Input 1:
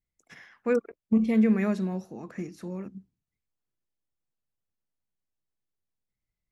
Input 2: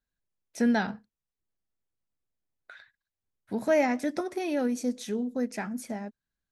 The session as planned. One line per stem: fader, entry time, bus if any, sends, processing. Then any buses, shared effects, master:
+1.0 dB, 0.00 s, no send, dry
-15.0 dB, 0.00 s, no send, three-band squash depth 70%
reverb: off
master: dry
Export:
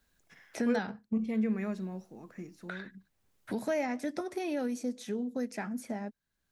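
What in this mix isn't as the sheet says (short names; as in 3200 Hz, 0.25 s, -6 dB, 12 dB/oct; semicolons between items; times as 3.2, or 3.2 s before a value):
stem 1 +1.0 dB -> -8.5 dB; stem 2 -15.0 dB -> -5.0 dB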